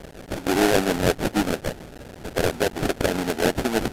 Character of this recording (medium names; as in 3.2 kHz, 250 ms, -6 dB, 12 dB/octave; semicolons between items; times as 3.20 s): a quantiser's noise floor 6-bit, dither triangular; tremolo triangle 6.7 Hz, depth 40%; aliases and images of a low sample rate 1.1 kHz, jitter 20%; AAC